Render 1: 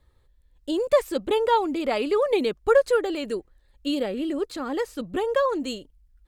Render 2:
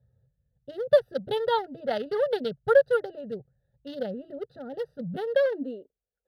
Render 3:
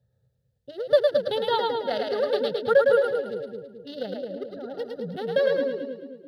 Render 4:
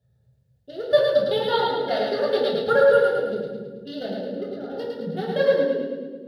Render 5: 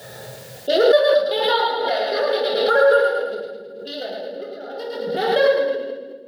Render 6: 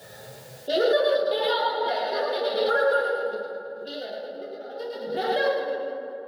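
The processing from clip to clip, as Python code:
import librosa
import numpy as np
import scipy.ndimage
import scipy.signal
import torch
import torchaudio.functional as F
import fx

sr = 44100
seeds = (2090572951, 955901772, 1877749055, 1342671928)

y1 = fx.wiener(x, sr, points=41)
y1 = fx.filter_sweep_highpass(y1, sr, from_hz=130.0, to_hz=460.0, start_s=4.88, end_s=6.09, q=4.7)
y1 = fx.fixed_phaser(y1, sr, hz=1600.0, stages=8)
y1 = F.gain(torch.from_numpy(y1), 1.0).numpy()
y2 = fx.highpass(y1, sr, hz=130.0, slope=6)
y2 = fx.peak_eq(y2, sr, hz=4200.0, db=6.0, octaves=0.75)
y2 = fx.echo_split(y2, sr, split_hz=450.0, low_ms=218, high_ms=108, feedback_pct=52, wet_db=-3.0)
y3 = fx.room_shoebox(y2, sr, seeds[0], volume_m3=520.0, walls='furnished', distance_m=3.2)
y3 = F.gain(torch.from_numpy(y3), -1.0).numpy()
y4 = scipy.signal.sosfilt(scipy.signal.butter(2, 570.0, 'highpass', fs=sr, output='sos'), y3)
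y4 = fx.pre_swell(y4, sr, db_per_s=30.0)
y4 = F.gain(torch.from_numpy(y4), 4.0).numpy()
y5 = fx.chorus_voices(y4, sr, voices=2, hz=0.38, base_ms=11, depth_ms=3.1, mix_pct=40)
y5 = fx.echo_wet_bandpass(y5, sr, ms=155, feedback_pct=70, hz=660.0, wet_db=-7.5)
y5 = F.gain(torch.from_numpy(y5), -3.5).numpy()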